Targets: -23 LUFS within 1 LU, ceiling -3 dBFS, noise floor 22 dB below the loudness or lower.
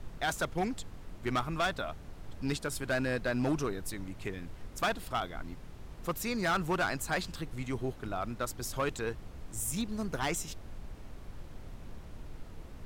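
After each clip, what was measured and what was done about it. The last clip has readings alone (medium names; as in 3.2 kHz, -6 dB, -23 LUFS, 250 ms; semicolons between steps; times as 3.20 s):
clipped samples 1.3%; clipping level -25.0 dBFS; noise floor -48 dBFS; noise floor target -57 dBFS; loudness -34.5 LUFS; peak level -25.0 dBFS; loudness target -23.0 LUFS
-> clip repair -25 dBFS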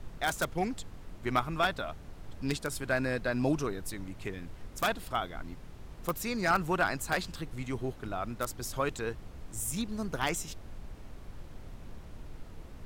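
clipped samples 0.0%; noise floor -48 dBFS; noise floor target -56 dBFS
-> noise print and reduce 8 dB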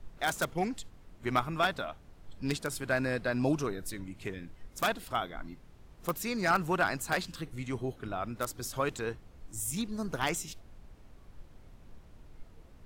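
noise floor -56 dBFS; loudness -33.5 LUFS; peak level -15.5 dBFS; loudness target -23.0 LUFS
-> trim +10.5 dB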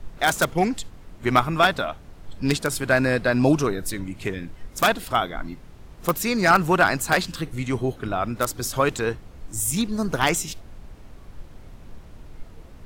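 loudness -23.0 LUFS; peak level -5.0 dBFS; noise floor -45 dBFS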